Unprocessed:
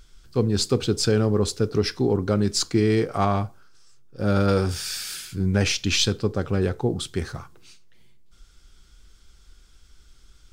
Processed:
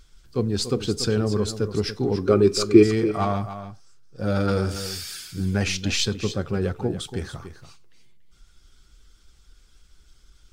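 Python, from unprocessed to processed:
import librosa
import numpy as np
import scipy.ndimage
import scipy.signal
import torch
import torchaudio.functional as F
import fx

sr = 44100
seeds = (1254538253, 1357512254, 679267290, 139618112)

p1 = fx.spec_quant(x, sr, step_db=15)
p2 = fx.small_body(p1, sr, hz=(380.0, 1200.0, 2400.0), ring_ms=25, db=fx.line((2.23, 13.0), (2.82, 17.0)), at=(2.23, 2.82), fade=0.02)
p3 = p2 + fx.echo_single(p2, sr, ms=286, db=-11.5, dry=0)
y = p3 * librosa.db_to_amplitude(-2.0)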